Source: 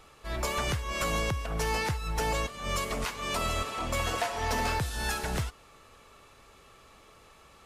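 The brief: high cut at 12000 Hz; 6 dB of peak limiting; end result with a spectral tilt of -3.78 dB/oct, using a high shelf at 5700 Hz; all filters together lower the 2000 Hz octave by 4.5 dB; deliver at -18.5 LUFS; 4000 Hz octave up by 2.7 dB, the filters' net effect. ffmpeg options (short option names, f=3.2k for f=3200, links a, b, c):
-af "lowpass=12k,equalizer=f=2k:t=o:g=-7.5,equalizer=f=4k:t=o:g=8,highshelf=f=5.7k:g=-5,volume=15.5dB,alimiter=limit=-9dB:level=0:latency=1"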